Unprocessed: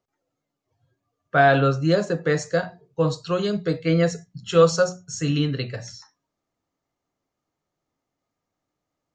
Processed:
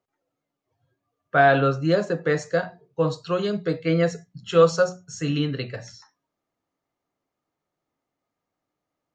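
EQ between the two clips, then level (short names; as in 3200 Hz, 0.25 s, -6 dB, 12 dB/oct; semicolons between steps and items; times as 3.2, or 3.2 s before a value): tone controls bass -1 dB, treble -6 dB; low shelf 100 Hz -6.5 dB; 0.0 dB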